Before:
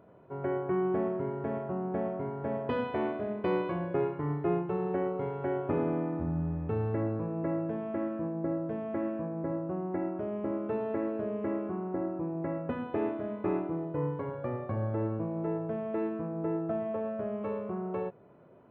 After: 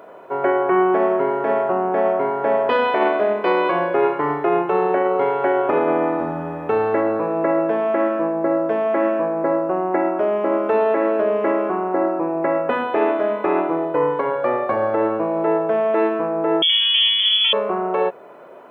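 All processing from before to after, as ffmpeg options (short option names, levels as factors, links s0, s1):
-filter_complex "[0:a]asettb=1/sr,asplit=3[s0][s1][s2];[s0]atrim=end=16.624[s3];[s1]atrim=start=16.62:end=17.53,asetpts=PTS-STARTPTS,afade=t=in:d=0.004:c=qsin,afade=t=out:st=0.906:d=0.004:c=qsin,equalizer=f=630:t=o:w=0.56:g=-7,lowpass=f=3100:t=q:w=0.5098,lowpass=f=3100:t=q:w=0.6013,lowpass=f=3100:t=q:w=0.9,lowpass=f=3100:t=q:w=2.563,afreqshift=-3600[s4];[s2]atrim=start=17.526[s5];[s3][s4]acrossfade=d=0.004:c1=hsin:c2=qsin[s6];[s6][s5]acrossfade=d=0.004:c1=qsin:c2=hsin,highpass=540,alimiter=level_in=26.6:limit=0.891:release=50:level=0:latency=1,volume=0.398"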